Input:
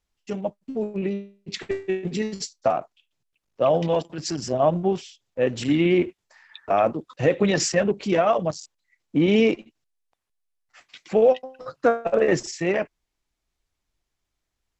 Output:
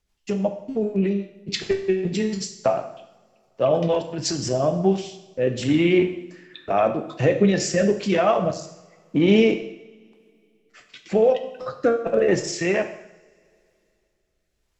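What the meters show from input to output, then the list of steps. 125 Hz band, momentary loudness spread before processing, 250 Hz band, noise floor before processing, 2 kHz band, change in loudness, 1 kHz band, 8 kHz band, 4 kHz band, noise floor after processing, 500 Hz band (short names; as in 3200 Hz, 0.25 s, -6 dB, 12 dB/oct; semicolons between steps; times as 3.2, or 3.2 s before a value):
+3.0 dB, 11 LU, +2.5 dB, -81 dBFS, +1.0 dB, +1.0 dB, -1.0 dB, +1.0 dB, +2.0 dB, -71 dBFS, +1.0 dB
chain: in parallel at +1 dB: compressor, threshold -30 dBFS, peak gain reduction 16 dB; on the sum: rotary speaker horn 6.3 Hz, later 0.9 Hz, at 4.02; two-slope reverb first 0.76 s, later 2.9 s, from -24 dB, DRR 6 dB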